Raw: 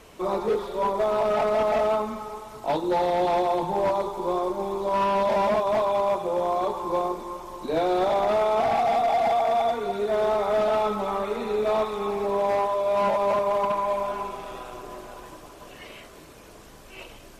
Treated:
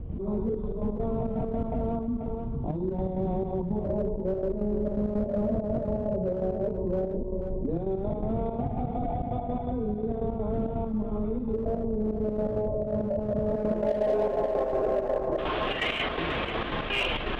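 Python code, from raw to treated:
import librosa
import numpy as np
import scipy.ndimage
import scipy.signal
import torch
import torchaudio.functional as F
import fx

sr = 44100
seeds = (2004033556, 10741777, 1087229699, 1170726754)

p1 = scipy.signal.medfilt(x, 9)
p2 = fx.high_shelf(p1, sr, hz=2200.0, db=8.0)
p3 = fx.filter_lfo_lowpass(p2, sr, shape='square', hz=0.13, low_hz=560.0, high_hz=3400.0, q=4.0)
p4 = fx.pitch_keep_formants(p3, sr, semitones=1.0)
p5 = fx.filter_sweep_lowpass(p4, sr, from_hz=140.0, to_hz=2100.0, start_s=13.42, end_s=14.81, q=0.86)
p6 = np.clip(10.0 ** (36.0 / 20.0) * p5, -1.0, 1.0) / 10.0 ** (36.0 / 20.0)
p7 = p5 + (p6 * 10.0 ** (-5.0 / 20.0))
p8 = fx.step_gate(p7, sr, bpm=166, pattern='.x.xxx.x', floor_db=-12.0, edge_ms=4.5)
p9 = p8 + 10.0 ** (-17.5 / 20.0) * np.pad(p8, (int(486 * sr / 1000.0), 0))[:len(p8)]
y = fx.env_flatten(p9, sr, amount_pct=70)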